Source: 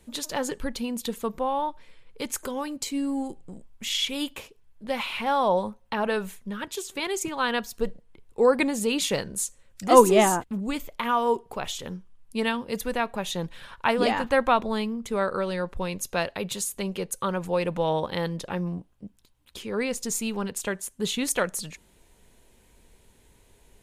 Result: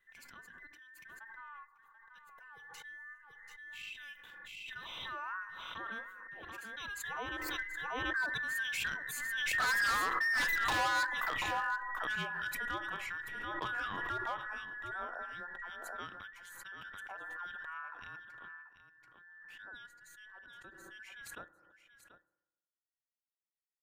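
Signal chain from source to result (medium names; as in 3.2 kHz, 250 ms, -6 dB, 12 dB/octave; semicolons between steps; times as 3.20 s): every band turned upside down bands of 2 kHz; Doppler pass-by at 10.62 s, 10 m/s, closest 2.1 m; high-order bell 7.5 kHz -10 dB; expander -57 dBFS; delay 735 ms -13.5 dB; in parallel at +1.5 dB: compression 6:1, threshold -48 dBFS, peak gain reduction 24 dB; on the sum: overload inside the chain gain 32.5 dB; on a send at -16.5 dB: dynamic bell 1.3 kHz, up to +6 dB, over -58 dBFS, Q 5.1 + reverberation RT60 1.0 s, pre-delay 3 ms; on the sum: swell ahead of each attack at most 21 dB/s; trim +3 dB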